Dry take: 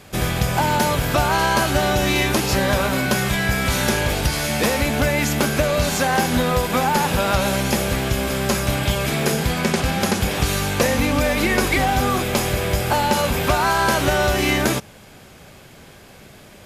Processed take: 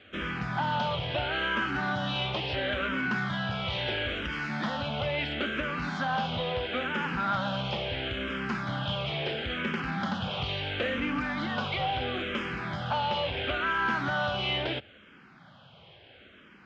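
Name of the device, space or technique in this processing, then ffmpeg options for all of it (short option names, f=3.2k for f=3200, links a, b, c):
barber-pole phaser into a guitar amplifier: -filter_complex "[0:a]asplit=2[a][b];[b]afreqshift=-0.74[c];[a][c]amix=inputs=2:normalize=1,asoftclip=type=tanh:threshold=-15.5dB,highpass=87,equalizer=f=410:t=q:w=4:g=-4,equalizer=f=1.4k:t=q:w=4:g=6,equalizer=f=3.1k:t=q:w=4:g=9,lowpass=f=3.7k:w=0.5412,lowpass=f=3.7k:w=1.3066,volume=-7dB"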